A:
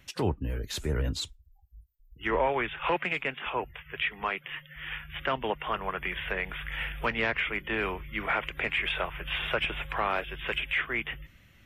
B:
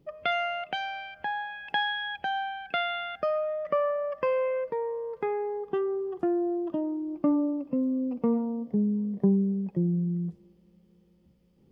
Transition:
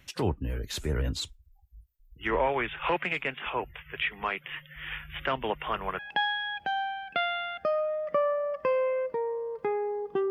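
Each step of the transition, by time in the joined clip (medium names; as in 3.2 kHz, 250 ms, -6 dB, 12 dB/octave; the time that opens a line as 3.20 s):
A
5.99 s: go over to B from 1.57 s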